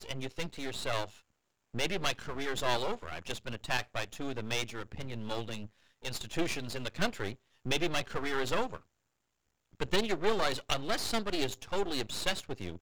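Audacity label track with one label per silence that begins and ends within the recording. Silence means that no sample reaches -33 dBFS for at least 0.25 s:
1.050000	1.750000	silence
5.630000	6.050000	silence
7.320000	7.660000	silence
8.760000	9.800000	silence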